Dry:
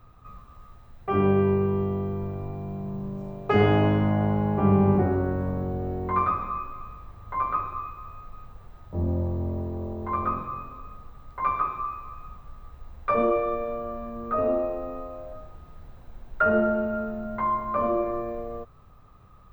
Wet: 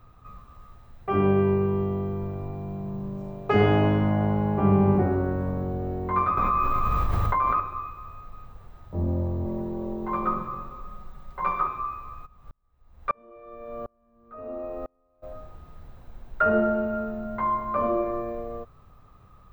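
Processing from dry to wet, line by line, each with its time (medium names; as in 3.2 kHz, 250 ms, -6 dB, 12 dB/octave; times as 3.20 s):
6.37–7.60 s: level flattener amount 100%
9.45–11.67 s: comb 5.4 ms, depth 77%
12.25–15.22 s: sawtooth tremolo in dB swelling 2 Hz -> 0.75 Hz, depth 37 dB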